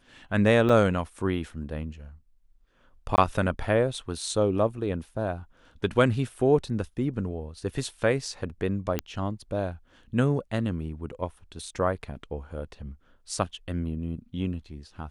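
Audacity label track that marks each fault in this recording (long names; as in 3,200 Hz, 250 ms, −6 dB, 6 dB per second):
0.690000	0.690000	drop-out 4.4 ms
3.160000	3.180000	drop-out 19 ms
8.990000	8.990000	click −11 dBFS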